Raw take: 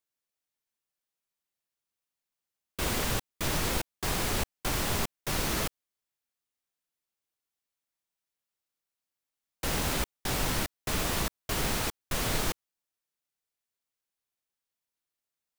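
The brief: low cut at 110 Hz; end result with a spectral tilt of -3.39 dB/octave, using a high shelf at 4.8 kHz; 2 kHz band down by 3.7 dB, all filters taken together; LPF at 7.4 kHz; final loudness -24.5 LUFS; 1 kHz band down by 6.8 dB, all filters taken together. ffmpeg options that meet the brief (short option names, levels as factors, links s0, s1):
-af "highpass=110,lowpass=7400,equalizer=f=1000:t=o:g=-8.5,equalizer=f=2000:t=o:g=-3.5,highshelf=f=4800:g=7,volume=2.51"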